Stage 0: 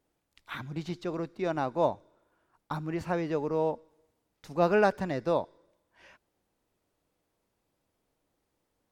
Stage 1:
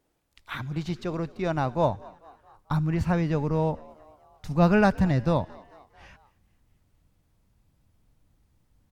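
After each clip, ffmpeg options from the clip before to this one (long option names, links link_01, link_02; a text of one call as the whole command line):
ffmpeg -i in.wav -filter_complex "[0:a]asplit=5[link_01][link_02][link_03][link_04][link_05];[link_02]adelay=222,afreqshift=71,volume=-23dB[link_06];[link_03]adelay=444,afreqshift=142,volume=-27.7dB[link_07];[link_04]adelay=666,afreqshift=213,volume=-32.5dB[link_08];[link_05]adelay=888,afreqshift=284,volume=-37.2dB[link_09];[link_01][link_06][link_07][link_08][link_09]amix=inputs=5:normalize=0,asubboost=boost=9:cutoff=140,volume=4dB" out.wav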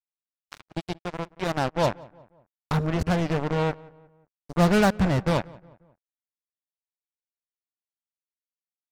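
ffmpeg -i in.wav -filter_complex "[0:a]acrusher=bits=3:mix=0:aa=0.5,asplit=2[link_01][link_02];[link_02]adelay=179,lowpass=frequency=2000:poles=1,volume=-22dB,asplit=2[link_03][link_04];[link_04]adelay=179,lowpass=frequency=2000:poles=1,volume=0.46,asplit=2[link_05][link_06];[link_06]adelay=179,lowpass=frequency=2000:poles=1,volume=0.46[link_07];[link_01][link_03][link_05][link_07]amix=inputs=4:normalize=0" out.wav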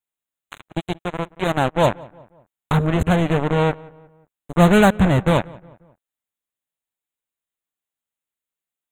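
ffmpeg -i in.wav -af "asuperstop=centerf=5100:order=8:qfactor=2.1,volume=6.5dB" out.wav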